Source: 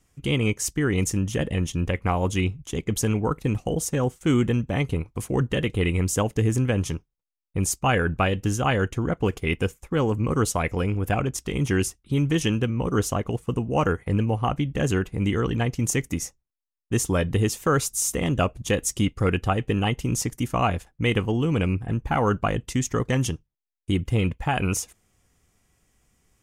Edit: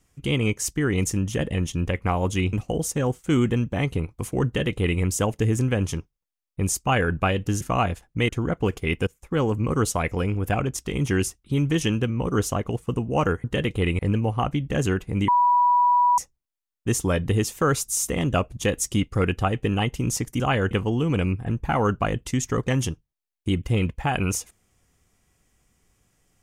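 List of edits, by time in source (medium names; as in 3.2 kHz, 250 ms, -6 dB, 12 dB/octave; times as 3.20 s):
2.53–3.50 s: delete
5.43–5.98 s: copy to 14.04 s
8.58–8.89 s: swap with 20.45–21.13 s
9.67–9.93 s: fade in, from -20.5 dB
15.33–16.23 s: bleep 977 Hz -15 dBFS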